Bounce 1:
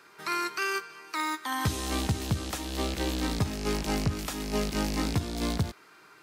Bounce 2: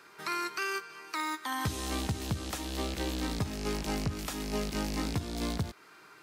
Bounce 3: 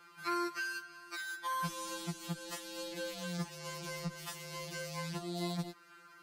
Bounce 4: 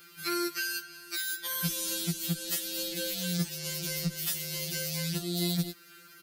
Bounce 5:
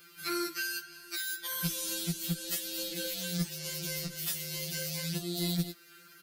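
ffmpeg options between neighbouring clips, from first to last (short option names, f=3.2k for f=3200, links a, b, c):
-af "acompressor=threshold=-36dB:ratio=1.5"
-af "afftfilt=real='re*2.83*eq(mod(b,8),0)':imag='im*2.83*eq(mod(b,8),0)':win_size=2048:overlap=0.75,volume=-2.5dB"
-af "firequalizer=gain_entry='entry(170,0);entry(500,-5);entry(990,-20);entry(1400,-6);entry(3500,3);entry(5100,3);entry(7700,3);entry(14000,15)':delay=0.05:min_phase=1,volume=8dB"
-af "flanger=delay=1.8:depth=6.6:regen=-63:speed=0.77:shape=sinusoidal,aeval=exprs='0.0891*(cos(1*acos(clip(val(0)/0.0891,-1,1)))-cos(1*PI/2))+0.01*(cos(2*acos(clip(val(0)/0.0891,-1,1)))-cos(2*PI/2))+0.000708*(cos(6*acos(clip(val(0)/0.0891,-1,1)))-cos(6*PI/2))+0.00126*(cos(8*acos(clip(val(0)/0.0891,-1,1)))-cos(8*PI/2))':c=same,volume=2dB"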